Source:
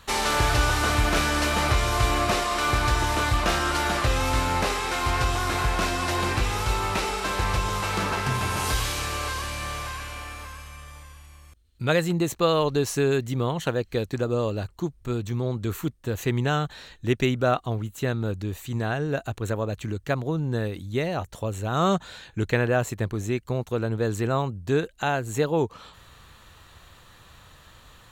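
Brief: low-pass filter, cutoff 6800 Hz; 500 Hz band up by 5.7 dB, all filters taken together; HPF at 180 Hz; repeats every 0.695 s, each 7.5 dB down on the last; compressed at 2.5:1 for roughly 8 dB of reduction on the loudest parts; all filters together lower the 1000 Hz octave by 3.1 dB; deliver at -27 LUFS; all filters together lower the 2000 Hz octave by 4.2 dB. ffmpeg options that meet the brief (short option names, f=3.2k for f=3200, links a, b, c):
-af "highpass=180,lowpass=6.8k,equalizer=f=500:t=o:g=8.5,equalizer=f=1k:t=o:g=-6,equalizer=f=2k:t=o:g=-4,acompressor=threshold=-25dB:ratio=2.5,aecho=1:1:695|1390|2085|2780|3475:0.422|0.177|0.0744|0.0312|0.0131,volume=1.5dB"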